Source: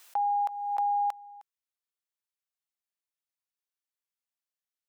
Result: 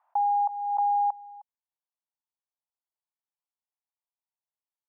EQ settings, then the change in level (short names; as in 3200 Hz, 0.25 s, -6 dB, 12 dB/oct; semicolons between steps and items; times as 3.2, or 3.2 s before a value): elliptic high-pass 610 Hz; synth low-pass 900 Hz, resonance Q 4; air absorption 460 m; -5.0 dB